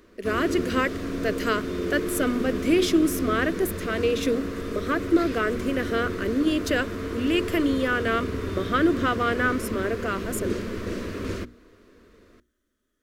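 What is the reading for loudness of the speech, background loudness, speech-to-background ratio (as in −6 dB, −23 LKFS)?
−26.0 LKFS, −31.0 LKFS, 5.0 dB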